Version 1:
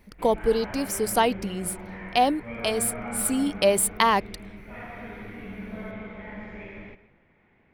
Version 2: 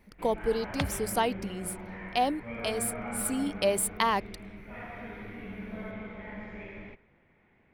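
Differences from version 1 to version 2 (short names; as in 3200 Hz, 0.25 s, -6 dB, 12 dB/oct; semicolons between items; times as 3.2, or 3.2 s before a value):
speech -6.0 dB; first sound: send -11.5 dB; second sound: unmuted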